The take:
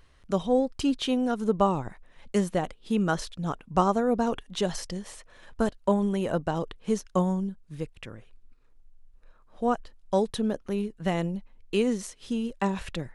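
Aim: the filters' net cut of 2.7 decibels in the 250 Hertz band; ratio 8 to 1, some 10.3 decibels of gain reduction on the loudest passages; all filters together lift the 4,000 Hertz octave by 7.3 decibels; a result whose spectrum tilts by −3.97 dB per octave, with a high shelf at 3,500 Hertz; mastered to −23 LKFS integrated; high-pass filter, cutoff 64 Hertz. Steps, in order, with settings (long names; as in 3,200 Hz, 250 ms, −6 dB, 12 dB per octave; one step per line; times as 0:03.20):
high-pass filter 64 Hz
parametric band 250 Hz −3.5 dB
high-shelf EQ 3,500 Hz +8.5 dB
parametric band 4,000 Hz +4 dB
downward compressor 8 to 1, threshold −29 dBFS
level +12 dB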